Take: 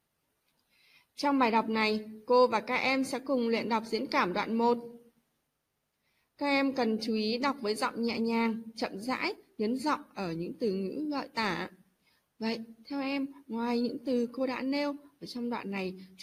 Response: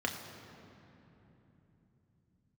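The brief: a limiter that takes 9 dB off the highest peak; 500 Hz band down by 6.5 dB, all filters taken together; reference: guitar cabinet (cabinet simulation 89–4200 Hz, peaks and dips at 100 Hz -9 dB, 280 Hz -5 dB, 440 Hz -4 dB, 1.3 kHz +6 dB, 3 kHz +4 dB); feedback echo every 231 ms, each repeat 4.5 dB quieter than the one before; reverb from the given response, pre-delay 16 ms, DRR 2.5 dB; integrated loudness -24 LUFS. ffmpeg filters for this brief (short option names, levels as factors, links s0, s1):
-filter_complex "[0:a]equalizer=f=500:t=o:g=-4.5,alimiter=level_in=1.06:limit=0.0631:level=0:latency=1,volume=0.944,aecho=1:1:231|462|693|924|1155|1386|1617|1848|2079:0.596|0.357|0.214|0.129|0.0772|0.0463|0.0278|0.0167|0.01,asplit=2[s0][s1];[1:a]atrim=start_sample=2205,adelay=16[s2];[s1][s2]afir=irnorm=-1:irlink=0,volume=0.376[s3];[s0][s3]amix=inputs=2:normalize=0,highpass=89,equalizer=f=100:t=q:w=4:g=-9,equalizer=f=280:t=q:w=4:g=-5,equalizer=f=440:t=q:w=4:g=-4,equalizer=f=1300:t=q:w=4:g=6,equalizer=f=3000:t=q:w=4:g=4,lowpass=f=4200:w=0.5412,lowpass=f=4200:w=1.3066,volume=2.51"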